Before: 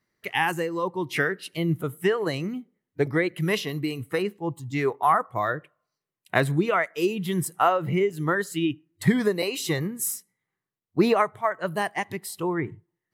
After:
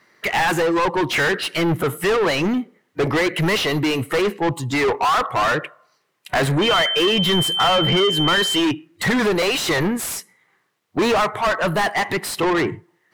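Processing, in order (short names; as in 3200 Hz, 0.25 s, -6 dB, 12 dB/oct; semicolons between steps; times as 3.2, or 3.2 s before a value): overdrive pedal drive 37 dB, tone 2700 Hz, clips at -5 dBFS; 6.61–8.6 whine 3100 Hz -14 dBFS; gain -5.5 dB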